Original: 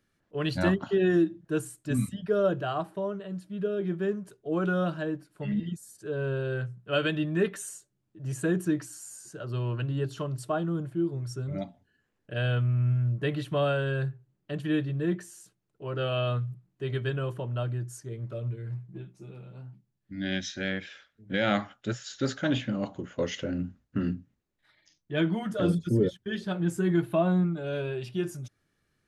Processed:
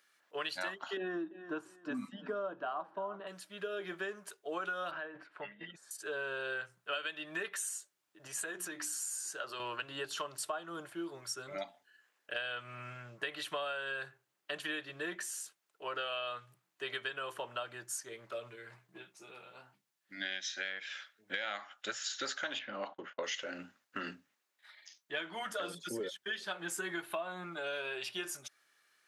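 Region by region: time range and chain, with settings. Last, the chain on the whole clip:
0.97–3.27 s: FFT filter 140 Hz 0 dB, 250 Hz +12 dB, 430 Hz -2 dB, 1 kHz +3 dB, 1.9 kHz -9 dB, 5.6 kHz -16 dB, 9.2 kHz -30 dB + feedback delay 340 ms, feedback 25%, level -19.5 dB
4.91–5.91 s: Chebyshev low-pass 2 kHz + compressor with a negative ratio -38 dBFS
8.27–9.60 s: hum notches 60/120/180/240/300/360 Hz + doubling 14 ms -14 dB + compression 3:1, threshold -35 dBFS
22.59–23.24 s: gate -48 dBFS, range -30 dB + distance through air 250 m
whole clip: high-pass 950 Hz 12 dB/octave; compression 10:1, threshold -43 dBFS; trim +8 dB

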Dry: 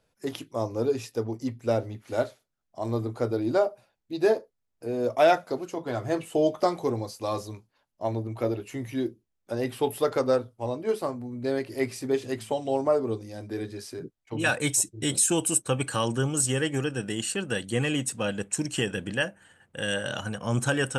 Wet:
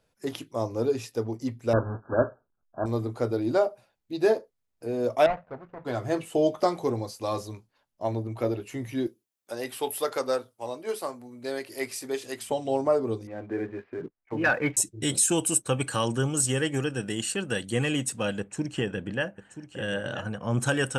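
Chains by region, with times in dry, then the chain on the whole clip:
1.73–2.86 s: square wave that keeps the level + brick-wall FIR low-pass 1.7 kHz
5.26–5.85 s: median filter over 41 samples + Chebyshev low-pass 1.4 kHz + peaking EQ 340 Hz -14 dB 0.98 oct
9.07–12.50 s: high-pass 620 Hz 6 dB/octave + treble shelf 7.1 kHz +8.5 dB
13.27–14.77 s: steep low-pass 2.3 kHz + peaking EQ 82 Hz -8 dB 2.4 oct + waveshaping leveller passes 1
18.40–20.60 s: low-pass 1.8 kHz 6 dB/octave + delay 980 ms -12 dB
whole clip: none

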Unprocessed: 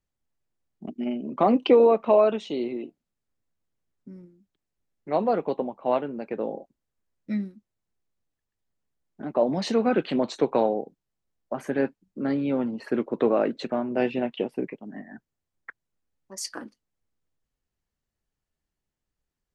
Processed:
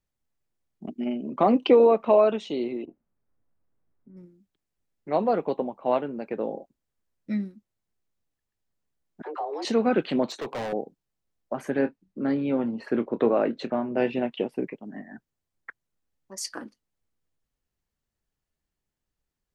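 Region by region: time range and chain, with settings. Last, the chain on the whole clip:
2.85–4.17 s: low-pass 1.4 kHz + compressor with a negative ratio -46 dBFS, ratio -0.5 + doubling 22 ms -10.5 dB
9.22–9.65 s: phase dispersion lows, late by 41 ms, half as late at 530 Hz + compression 2.5:1, threshold -32 dBFS + frequency shift +160 Hz
10.26–10.73 s: high-pass 130 Hz + overload inside the chain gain 29 dB
11.79–14.13 s: treble shelf 7.7 kHz -11.5 dB + doubling 26 ms -13 dB
whole clip: none

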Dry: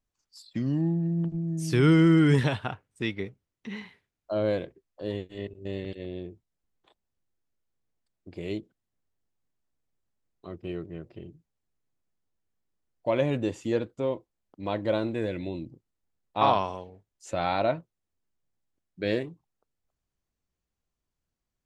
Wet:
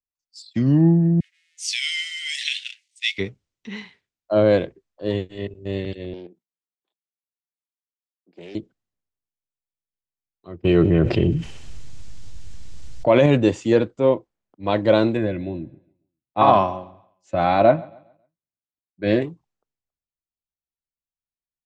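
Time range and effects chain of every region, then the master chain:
1.20–3.18 s: companding laws mixed up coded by mu + Chebyshev high-pass 2 kHz, order 5
6.13–8.55 s: steep high-pass 170 Hz 48 dB/octave + level held to a coarse grid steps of 10 dB + loudspeaker Doppler distortion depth 0.26 ms
10.64–13.26 s: feedback echo behind a high-pass 64 ms, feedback 72%, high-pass 2.4 kHz, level -21.5 dB + level flattener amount 70%
15.17–19.22 s: low-pass 2 kHz 6 dB/octave + comb of notches 460 Hz + feedback delay 137 ms, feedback 53%, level -21 dB
whole clip: low-pass 7.9 kHz 24 dB/octave; loudness maximiser +16 dB; three bands expanded up and down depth 70%; trim -6.5 dB

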